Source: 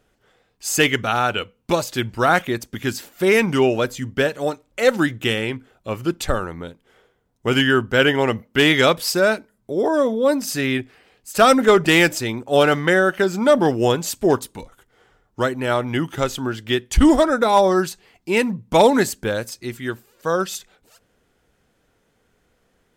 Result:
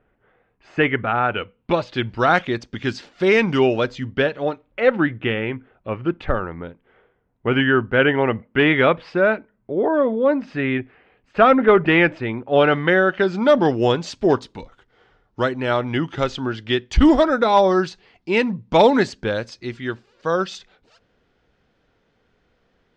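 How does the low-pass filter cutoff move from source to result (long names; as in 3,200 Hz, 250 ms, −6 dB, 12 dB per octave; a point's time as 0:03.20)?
low-pass filter 24 dB per octave
0:01.17 2,300 Hz
0:02.29 5,000 Hz
0:03.78 5,000 Hz
0:05.00 2,600 Hz
0:12.25 2,600 Hz
0:13.57 5,000 Hz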